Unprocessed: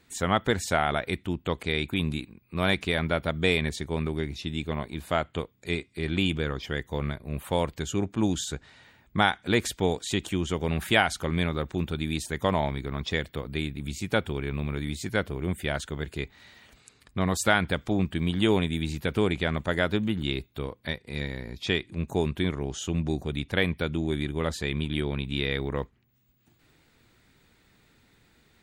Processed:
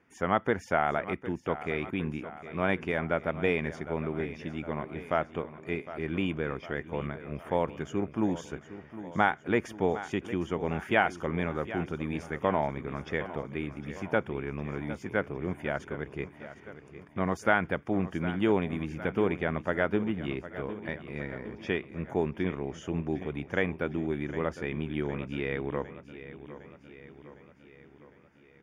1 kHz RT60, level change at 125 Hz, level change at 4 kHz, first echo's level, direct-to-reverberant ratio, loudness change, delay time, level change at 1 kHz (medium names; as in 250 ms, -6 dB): no reverb, -6.0 dB, -14.5 dB, -14.0 dB, no reverb, -3.0 dB, 758 ms, -1.0 dB